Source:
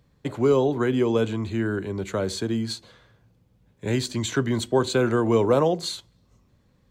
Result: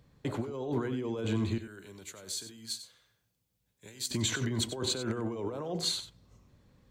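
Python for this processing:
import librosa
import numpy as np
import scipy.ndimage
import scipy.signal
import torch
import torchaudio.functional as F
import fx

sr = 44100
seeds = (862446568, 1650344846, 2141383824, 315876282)

y = fx.over_compress(x, sr, threshold_db=-28.0, ratio=-1.0)
y = fx.pre_emphasis(y, sr, coefficient=0.9, at=(1.58, 4.11))
y = y + 10.0 ** (-11.5 / 20.0) * np.pad(y, (int(94 * sr / 1000.0), 0))[:len(y)]
y = F.gain(torch.from_numpy(y), -5.0).numpy()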